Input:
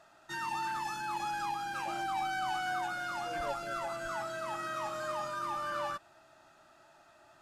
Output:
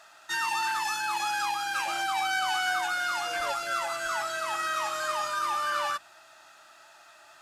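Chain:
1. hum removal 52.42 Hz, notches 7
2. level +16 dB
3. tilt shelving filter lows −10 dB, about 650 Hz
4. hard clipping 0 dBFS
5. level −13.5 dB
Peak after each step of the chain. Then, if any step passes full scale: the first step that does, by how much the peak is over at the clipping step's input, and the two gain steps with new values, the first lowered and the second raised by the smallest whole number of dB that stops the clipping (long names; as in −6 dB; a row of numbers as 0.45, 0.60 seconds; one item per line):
−26.5, −10.5, −2.5, −2.5, −16.0 dBFS
no step passes full scale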